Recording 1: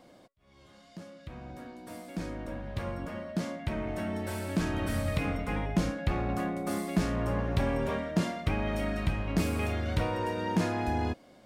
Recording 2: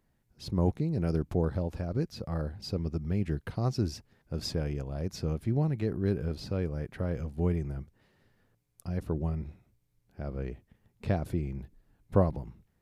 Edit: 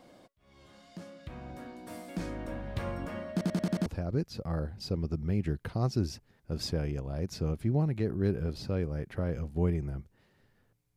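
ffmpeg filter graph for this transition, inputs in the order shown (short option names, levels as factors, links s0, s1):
-filter_complex "[0:a]apad=whole_dur=10.96,atrim=end=10.96,asplit=6[s0][s1][s2][s3][s4][s5];[s0]atrim=end=3.412[s6];[s1]atrim=start=3.318:end=3.412[s7];[s2]atrim=start=3.318:end=3.412[s8];[s3]atrim=start=3.318:end=3.412[s9];[s4]atrim=start=3.318:end=3.412[s10];[s5]atrim=start=3.318:end=3.412[s11];[1:a]atrim=start=1.678:end=8.78[s12];[s6][s7]acrossfade=d=0.004:c1=hsin:c2=hsin[s13];[s13][s8]acrossfade=d=0.004:c1=hsin:c2=hsin[s14];[s14][s9]acrossfade=d=0.004:c1=hsin:c2=hsin[s15];[s15][s10]acrossfade=d=0.004:c1=hsin:c2=hsin[s16];[s16][s11]acrossfade=d=0.004:c1=hsin:c2=hsin[s17];[s17][s12]acrossfade=d=0.004:c1=hsin:c2=hsin"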